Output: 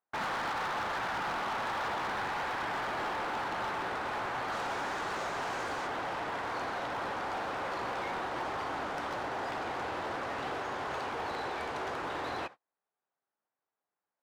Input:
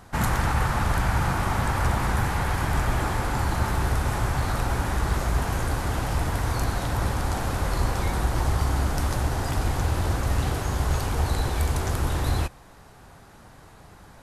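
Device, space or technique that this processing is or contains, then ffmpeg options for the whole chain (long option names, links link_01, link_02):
walkie-talkie: -filter_complex "[0:a]asettb=1/sr,asplit=3[link_01][link_02][link_03];[link_01]atrim=end=4.524[link_04];[link_02]atrim=start=4.52:end=5.87,asetpts=PTS-STARTPTS,afade=type=in:duration=0.004:curve=qsin,afade=type=out:start_time=1.346:duration=0.004:curve=qsin,equalizer=frequency=6900:width_type=o:width=1.3:gain=9.5[link_05];[link_03]atrim=start=5.866[link_06];[link_04][link_05]acrossfade=duration=0.004:curve1=hsin:curve2=qsin[link_07];[link_07][link_06]acrossfade=duration=0.004:curve1=qsin:curve2=hsin,highpass=420,lowpass=2800,asoftclip=type=hard:threshold=-30dB,agate=range=-38dB:threshold=-43dB:ratio=16:detection=peak,volume=-1.5dB"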